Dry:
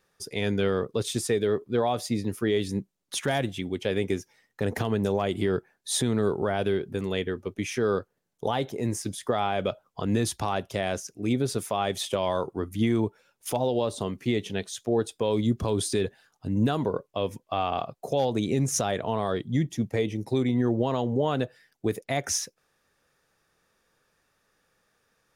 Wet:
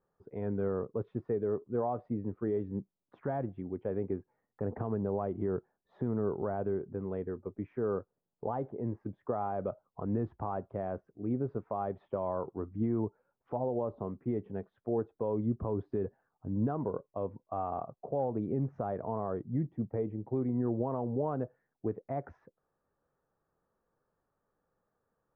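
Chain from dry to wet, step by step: LPF 1200 Hz 24 dB/oct; gain -7 dB

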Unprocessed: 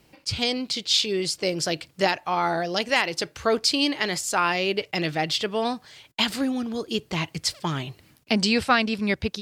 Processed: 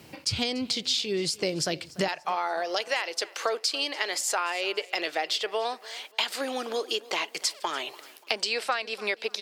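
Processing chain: HPF 72 Hz 24 dB/oct, from 2.08 s 420 Hz; compressor 5:1, threshold -35 dBFS, peak gain reduction 18.5 dB; feedback echo 0.291 s, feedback 36%, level -20.5 dB; gain +8.5 dB

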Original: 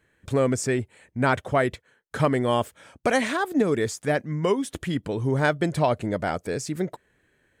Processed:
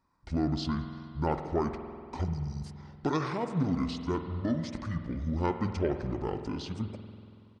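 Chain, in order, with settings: spectral delete 2.24–2.64, 360–6400 Hz; pitch shift -9 st; spring tank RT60 2.4 s, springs 47 ms, chirp 70 ms, DRR 7 dB; gain -7.5 dB

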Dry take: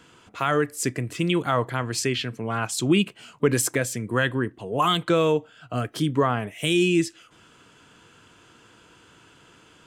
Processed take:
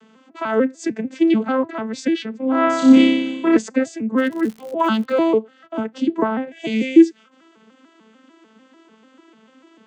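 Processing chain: arpeggiated vocoder minor triad, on A3, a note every 0.148 s; 2.39–3.57 flutter echo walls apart 5.2 m, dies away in 1.1 s; 4.17–5.19 crackle 170/s -> 53/s -35 dBFS; gain +5.5 dB

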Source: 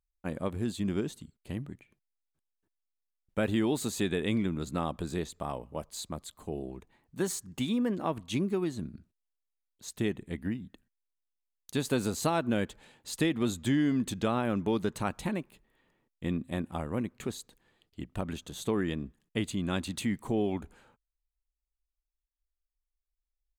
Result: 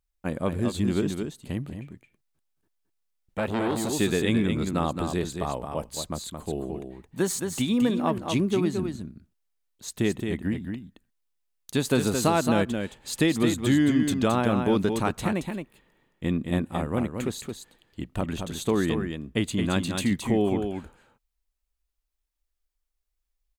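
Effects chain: echo 0.22 s -6 dB; 1.69–3.93 core saturation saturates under 1000 Hz; gain +5.5 dB

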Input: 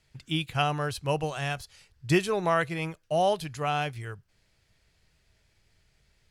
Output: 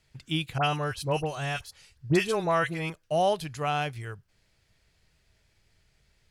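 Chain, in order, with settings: 0.58–2.9 dispersion highs, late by 58 ms, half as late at 1500 Hz

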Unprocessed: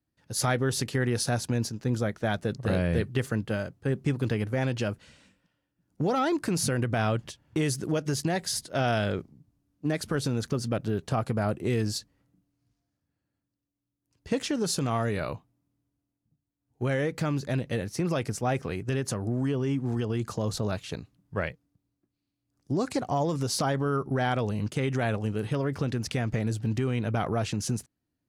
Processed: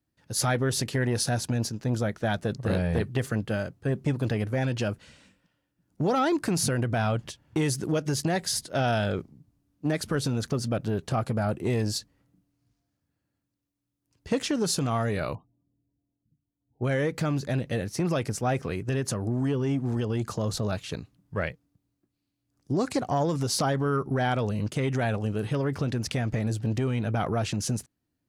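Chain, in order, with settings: 15.35–16.84 spectral gate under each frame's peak -25 dB strong; core saturation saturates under 340 Hz; gain +2 dB

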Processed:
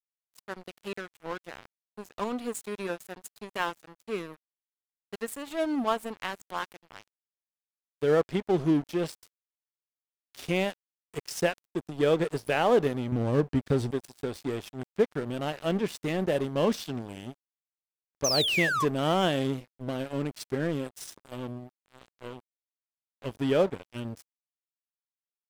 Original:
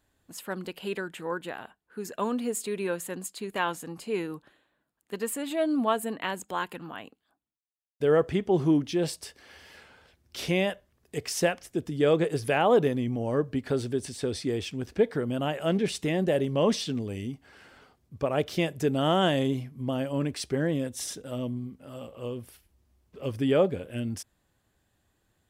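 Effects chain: 13.12–13.91 low shelf 200 Hz +10.5 dB; 18.24–18.85 painted sound fall 1000–6400 Hz -25 dBFS; crossover distortion -35.5 dBFS

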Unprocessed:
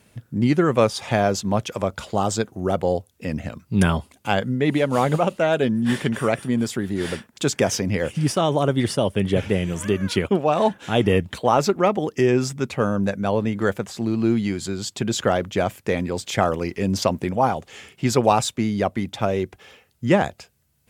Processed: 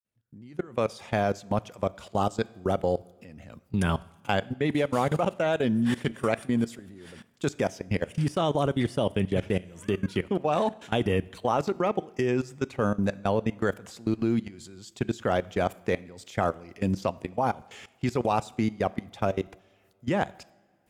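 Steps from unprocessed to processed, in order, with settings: opening faded in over 1.37 s; level quantiser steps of 22 dB; two-slope reverb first 0.76 s, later 3 s, from -18 dB, DRR 19 dB; gain -2 dB

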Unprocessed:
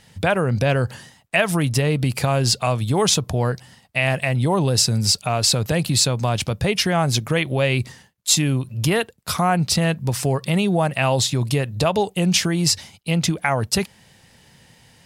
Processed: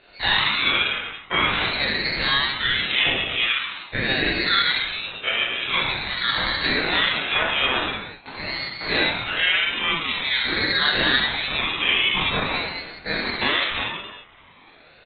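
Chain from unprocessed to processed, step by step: spectral dilation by 60 ms; HPF 990 Hz 6 dB/oct; compressor 4:1, threshold -18 dBFS, peak gain reduction 8 dB; hard clip -14.5 dBFS, distortion -16 dB; air absorption 230 m; doubler 21 ms -13 dB; non-linear reverb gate 0.42 s falling, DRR -4.5 dB; inverted band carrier 3400 Hz; ring modulator with a swept carrier 740 Hz, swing 50%, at 0.46 Hz; gain +3 dB

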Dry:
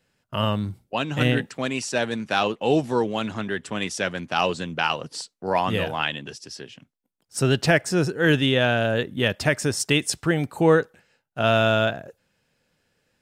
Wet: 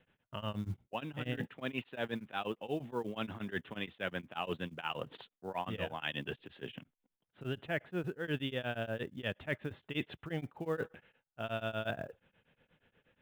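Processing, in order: steep low-pass 3600 Hz 96 dB/oct; reverse; compressor 4:1, threshold -37 dBFS, peak gain reduction 20 dB; reverse; short-mantissa float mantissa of 4-bit; beating tremolo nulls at 8.4 Hz; gain +2 dB

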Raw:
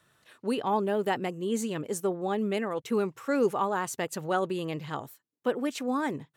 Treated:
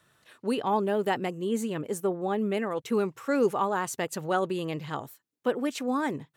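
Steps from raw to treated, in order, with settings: 1.47–2.59 dynamic EQ 5400 Hz, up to -6 dB, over -52 dBFS, Q 0.83; gain +1 dB

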